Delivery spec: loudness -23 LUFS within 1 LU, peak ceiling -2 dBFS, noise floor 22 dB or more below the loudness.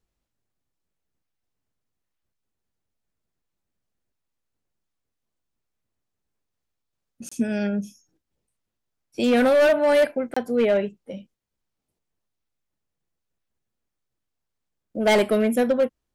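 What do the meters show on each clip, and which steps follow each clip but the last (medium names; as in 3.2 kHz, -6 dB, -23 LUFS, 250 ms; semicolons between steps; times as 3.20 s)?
clipped samples 1.2%; clipping level -14.0 dBFS; dropouts 2; longest dropout 25 ms; loudness -21.0 LUFS; peak level -14.0 dBFS; loudness target -23.0 LUFS
-> clip repair -14 dBFS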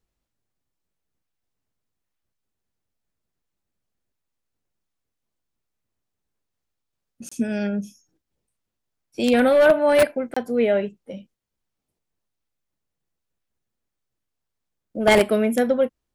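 clipped samples 0.0%; dropouts 2; longest dropout 25 ms
-> interpolate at 7.29/10.34 s, 25 ms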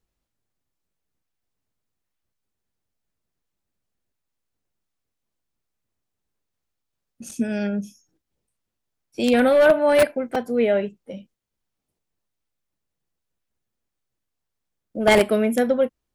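dropouts 0; loudness -20.0 LUFS; peak level -5.0 dBFS; loudness target -23.0 LUFS
-> trim -3 dB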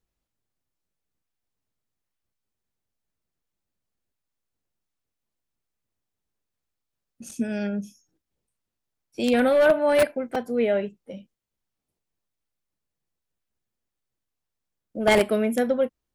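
loudness -23.0 LUFS; peak level -8.0 dBFS; noise floor -84 dBFS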